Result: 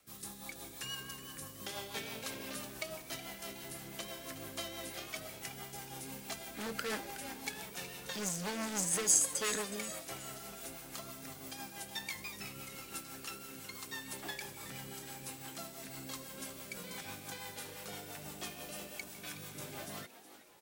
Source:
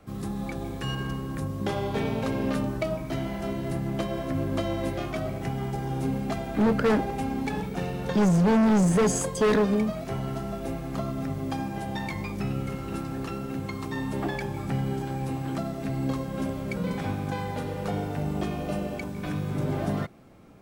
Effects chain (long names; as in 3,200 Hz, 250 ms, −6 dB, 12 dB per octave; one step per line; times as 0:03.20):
first-order pre-emphasis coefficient 0.97
rotating-speaker cabinet horn 6 Hz
echo with shifted repeats 369 ms, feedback 48%, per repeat +110 Hz, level −13 dB
level +7 dB